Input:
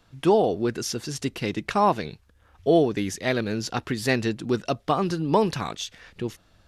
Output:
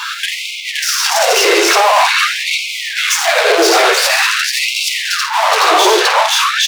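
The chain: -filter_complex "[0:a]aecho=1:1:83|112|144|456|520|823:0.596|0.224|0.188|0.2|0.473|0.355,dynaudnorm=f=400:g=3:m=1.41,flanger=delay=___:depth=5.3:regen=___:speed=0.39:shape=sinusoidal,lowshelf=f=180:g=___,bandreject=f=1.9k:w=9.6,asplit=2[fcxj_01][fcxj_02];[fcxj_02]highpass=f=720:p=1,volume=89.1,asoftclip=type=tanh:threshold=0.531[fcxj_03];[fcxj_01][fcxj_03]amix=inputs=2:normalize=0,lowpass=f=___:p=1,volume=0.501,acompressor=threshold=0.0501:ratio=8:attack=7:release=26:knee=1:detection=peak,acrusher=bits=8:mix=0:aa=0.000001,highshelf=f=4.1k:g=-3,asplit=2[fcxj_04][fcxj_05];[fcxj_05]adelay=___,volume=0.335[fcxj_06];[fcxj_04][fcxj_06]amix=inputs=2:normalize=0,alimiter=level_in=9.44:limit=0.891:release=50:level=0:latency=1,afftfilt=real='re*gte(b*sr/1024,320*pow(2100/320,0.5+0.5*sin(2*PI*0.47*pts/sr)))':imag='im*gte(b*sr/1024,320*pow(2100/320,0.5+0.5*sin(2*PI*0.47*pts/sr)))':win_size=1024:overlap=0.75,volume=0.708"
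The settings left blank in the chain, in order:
9.9, -19, 4.5, 6.2k, 50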